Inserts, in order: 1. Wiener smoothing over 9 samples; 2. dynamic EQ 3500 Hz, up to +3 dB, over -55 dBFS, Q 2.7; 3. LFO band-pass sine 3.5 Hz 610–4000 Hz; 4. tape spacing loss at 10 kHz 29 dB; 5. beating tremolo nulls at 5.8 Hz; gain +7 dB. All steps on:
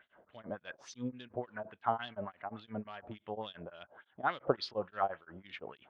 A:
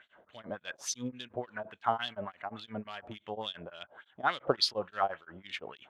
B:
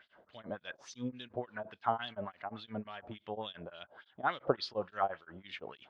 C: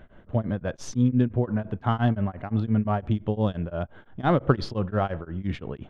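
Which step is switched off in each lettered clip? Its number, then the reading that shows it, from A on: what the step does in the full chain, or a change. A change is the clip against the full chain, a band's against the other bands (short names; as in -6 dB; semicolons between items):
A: 4, 4 kHz band +10.0 dB; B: 1, 4 kHz band +2.0 dB; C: 3, 125 Hz band +19.0 dB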